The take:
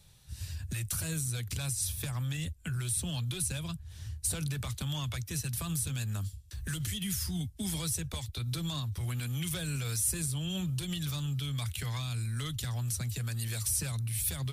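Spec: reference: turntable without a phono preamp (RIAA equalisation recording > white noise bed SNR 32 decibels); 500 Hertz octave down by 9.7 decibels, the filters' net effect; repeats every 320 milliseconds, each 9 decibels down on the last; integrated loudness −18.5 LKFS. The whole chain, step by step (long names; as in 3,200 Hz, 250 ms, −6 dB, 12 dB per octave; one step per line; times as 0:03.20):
RIAA equalisation recording
parametric band 500 Hz −9 dB
repeating echo 320 ms, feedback 35%, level −9 dB
white noise bed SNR 32 dB
level +5 dB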